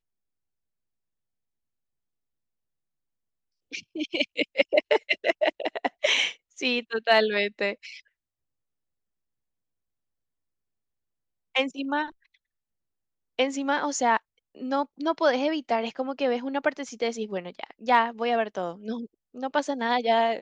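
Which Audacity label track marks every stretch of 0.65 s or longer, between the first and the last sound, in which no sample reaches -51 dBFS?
8.000000	11.550000	silence
12.350000	13.390000	silence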